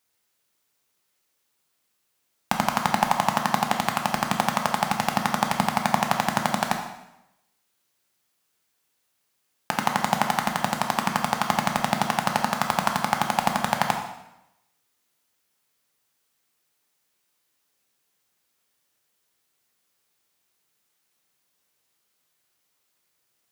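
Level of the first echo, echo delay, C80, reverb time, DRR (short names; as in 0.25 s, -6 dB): none, none, 8.5 dB, 0.90 s, 2.5 dB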